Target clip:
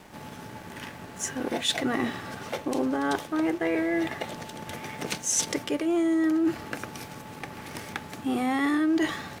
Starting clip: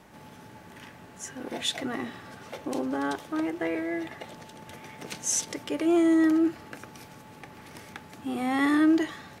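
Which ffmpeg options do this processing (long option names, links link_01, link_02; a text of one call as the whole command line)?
ffmpeg -i in.wav -af "areverse,acompressor=threshold=-31dB:ratio=6,areverse,aeval=exprs='sgn(val(0))*max(abs(val(0))-0.00112,0)':channel_layout=same,volume=8.5dB" out.wav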